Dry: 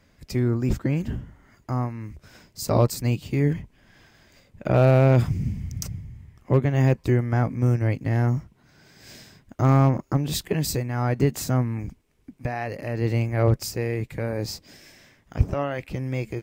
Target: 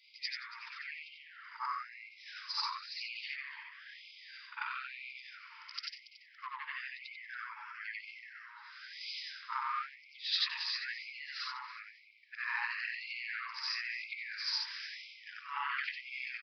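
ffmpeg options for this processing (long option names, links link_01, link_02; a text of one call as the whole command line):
ffmpeg -i in.wav -filter_complex "[0:a]afftfilt=real='re':imag='-im':win_size=8192:overlap=0.75,equalizer=frequency=65:width=1.9:gain=-6.5,asplit=2[link_01][link_02];[link_02]asoftclip=type=tanh:threshold=-24dB,volume=-7dB[link_03];[link_01][link_03]amix=inputs=2:normalize=0,acompressor=threshold=-31dB:ratio=16,flanger=delay=0.6:depth=9.7:regen=-40:speed=1.2:shape=triangular,asplit=2[link_04][link_05];[link_05]adelay=281,lowpass=frequency=1600:poles=1,volume=-7dB,asplit=2[link_06][link_07];[link_07]adelay=281,lowpass=frequency=1600:poles=1,volume=0.54,asplit=2[link_08][link_09];[link_09]adelay=281,lowpass=frequency=1600:poles=1,volume=0.54,asplit=2[link_10][link_11];[link_11]adelay=281,lowpass=frequency=1600:poles=1,volume=0.54,asplit=2[link_12][link_13];[link_13]adelay=281,lowpass=frequency=1600:poles=1,volume=0.54,asplit=2[link_14][link_15];[link_15]adelay=281,lowpass=frequency=1600:poles=1,volume=0.54,asplit=2[link_16][link_17];[link_17]adelay=281,lowpass=frequency=1600:poles=1,volume=0.54[link_18];[link_04][link_06][link_08][link_10][link_12][link_14][link_16][link_18]amix=inputs=8:normalize=0,adynamicequalizer=threshold=0.00112:dfrequency=1300:dqfactor=2.3:tfrequency=1300:tqfactor=2.3:attack=5:release=100:ratio=0.375:range=2:mode=cutabove:tftype=bell,aresample=11025,aresample=44100,afftfilt=real='re*gte(b*sr/1024,850*pow(2100/850,0.5+0.5*sin(2*PI*1*pts/sr)))':imag='im*gte(b*sr/1024,850*pow(2100/850,0.5+0.5*sin(2*PI*1*pts/sr)))':win_size=1024:overlap=0.75,volume=13dB" out.wav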